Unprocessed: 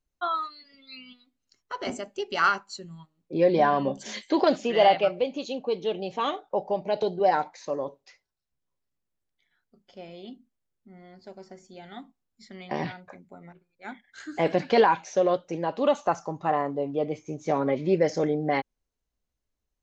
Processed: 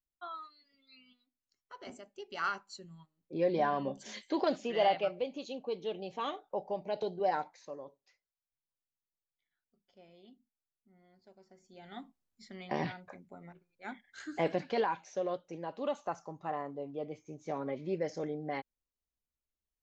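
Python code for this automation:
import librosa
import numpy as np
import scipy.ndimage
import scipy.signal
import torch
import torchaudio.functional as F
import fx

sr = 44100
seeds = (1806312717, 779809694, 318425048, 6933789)

y = fx.gain(x, sr, db=fx.line((2.13, -15.5), (2.71, -9.0), (7.4, -9.0), (7.83, -16.0), (11.48, -16.0), (11.96, -4.0), (14.28, -4.0), (14.74, -12.0)))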